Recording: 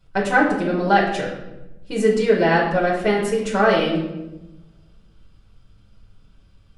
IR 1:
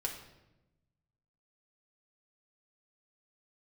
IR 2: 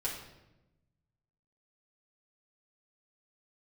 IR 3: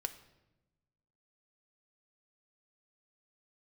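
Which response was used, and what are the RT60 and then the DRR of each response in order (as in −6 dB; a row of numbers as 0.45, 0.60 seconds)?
2; 1.0, 1.0, 1.0 seconds; −0.5, −6.0, 8.0 decibels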